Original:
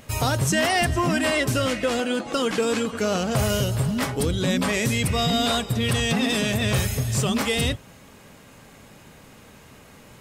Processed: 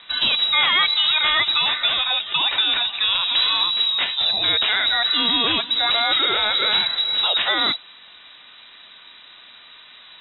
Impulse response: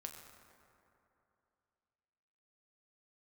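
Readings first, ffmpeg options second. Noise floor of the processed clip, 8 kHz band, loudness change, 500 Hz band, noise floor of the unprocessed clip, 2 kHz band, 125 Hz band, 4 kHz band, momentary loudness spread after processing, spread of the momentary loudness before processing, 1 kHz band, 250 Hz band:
−46 dBFS, below −40 dB, +5.5 dB, −9.0 dB, −49 dBFS, +5.0 dB, below −20 dB, +13.0 dB, 3 LU, 4 LU, +2.5 dB, −12.5 dB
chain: -af "highshelf=frequency=2100:gain=5.5,lowpass=frequency=3400:width_type=q:width=0.5098,lowpass=frequency=3400:width_type=q:width=0.6013,lowpass=frequency=3400:width_type=q:width=0.9,lowpass=frequency=3400:width_type=q:width=2.563,afreqshift=-4000,volume=2.5dB"

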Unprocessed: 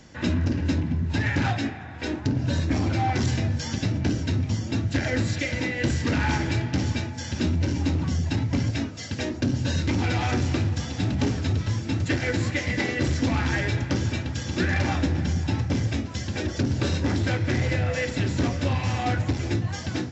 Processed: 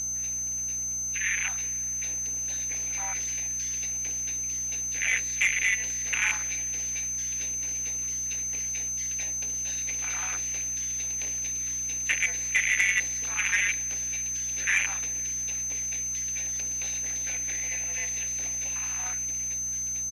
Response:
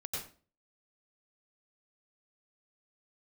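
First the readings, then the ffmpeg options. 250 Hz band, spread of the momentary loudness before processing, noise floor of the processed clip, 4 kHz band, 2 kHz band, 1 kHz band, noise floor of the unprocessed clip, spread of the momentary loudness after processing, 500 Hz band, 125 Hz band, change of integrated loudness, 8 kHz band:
−25.5 dB, 4 LU, −31 dBFS, −5.5 dB, +2.0 dB, −13.5 dB, −35 dBFS, 4 LU, −21.5 dB, −24.5 dB, −1.0 dB, can't be measured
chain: -af "afwtdn=0.0447,bandreject=frequency=3100:width=14,dynaudnorm=framelen=630:gausssize=5:maxgain=11.5dB,tremolo=f=190:d=0.824,aeval=exprs='val(0)+0.0447*sin(2*PI*6200*n/s)':channel_layout=same,highpass=frequency=2300:width_type=q:width=3.3,aeval=exprs='val(0)+0.00631*(sin(2*PI*60*n/s)+sin(2*PI*2*60*n/s)/2+sin(2*PI*3*60*n/s)/3+sin(2*PI*4*60*n/s)/4+sin(2*PI*5*60*n/s)/5)':channel_layout=same,asoftclip=type=tanh:threshold=-12.5dB,acrusher=bits=6:mix=0:aa=0.5,aresample=32000,aresample=44100,volume=-2.5dB"

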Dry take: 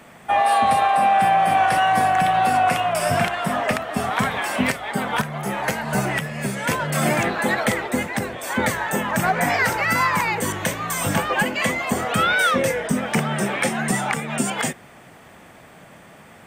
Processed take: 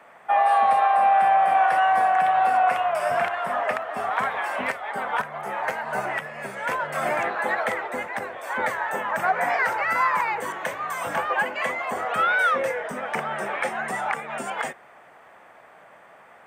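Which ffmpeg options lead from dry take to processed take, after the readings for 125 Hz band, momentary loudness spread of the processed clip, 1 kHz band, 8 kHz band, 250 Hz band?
−18.5 dB, 11 LU, −1.0 dB, −15.0 dB, −15.5 dB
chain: -filter_complex "[0:a]acrossover=split=480 2100:gain=0.112 1 0.178[link_01][link_02][link_03];[link_01][link_02][link_03]amix=inputs=3:normalize=0,bandreject=frequency=50:width_type=h:width=6,bandreject=frequency=100:width_type=h:width=6"

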